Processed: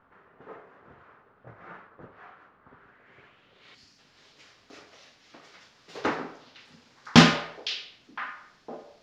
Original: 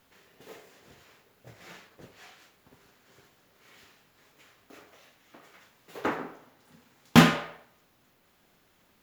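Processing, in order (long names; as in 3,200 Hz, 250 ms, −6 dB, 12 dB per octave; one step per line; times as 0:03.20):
low-pass filter sweep 1,300 Hz → 5,200 Hz, 0:02.71–0:03.93
echo through a band-pass that steps 509 ms, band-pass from 3,700 Hz, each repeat −1.4 octaves, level −9.5 dB
gain on a spectral selection 0:03.75–0:03.99, 310–4,200 Hz −9 dB
level +1.5 dB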